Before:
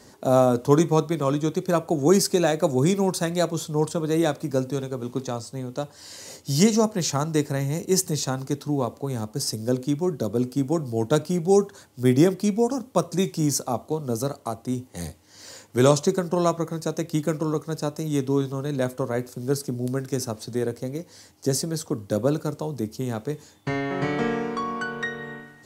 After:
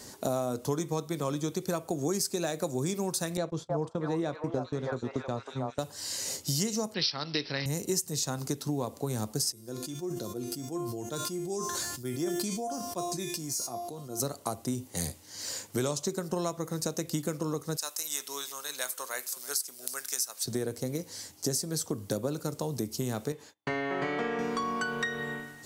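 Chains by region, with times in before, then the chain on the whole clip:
3.37–5.79 gate -32 dBFS, range -23 dB + tape spacing loss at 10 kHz 24 dB + delay with a stepping band-pass 0.317 s, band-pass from 850 Hz, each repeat 0.7 oct, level 0 dB
6.94–7.66 weighting filter D + careless resampling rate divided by 4×, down none, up filtered
9.52–14.2 resonator 350 Hz, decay 0.39 s, mix 90% + sustainer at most 27 dB/s
17.77–20.46 HPF 1300 Hz + high shelf 8200 Hz +6.5 dB + echo 0.33 s -18.5 dB
23.32–24.39 gate -52 dBFS, range -29 dB + tone controls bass -10 dB, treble -13 dB
whole clip: high shelf 3900 Hz +10 dB; compressor 6:1, threshold -28 dBFS

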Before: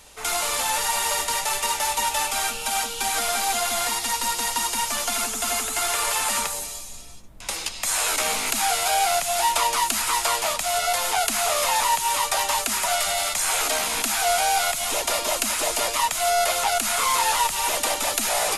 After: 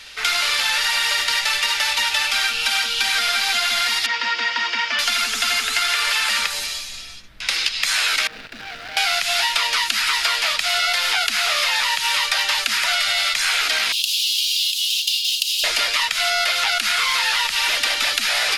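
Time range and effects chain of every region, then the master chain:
4.06–4.99 speaker cabinet 150–4600 Hz, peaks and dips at 170 Hz -8 dB, 410 Hz +8 dB, 4000 Hz -10 dB + notch comb 400 Hz
8.27–8.97 median filter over 41 samples + tube stage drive 35 dB, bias 0.7
13.92–15.64 Chebyshev high-pass 2800 Hz, order 6 + careless resampling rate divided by 2×, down none, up hold
whole clip: band shelf 2700 Hz +15.5 dB 2.3 oct; compressor, threshold -15 dBFS; gain -1.5 dB

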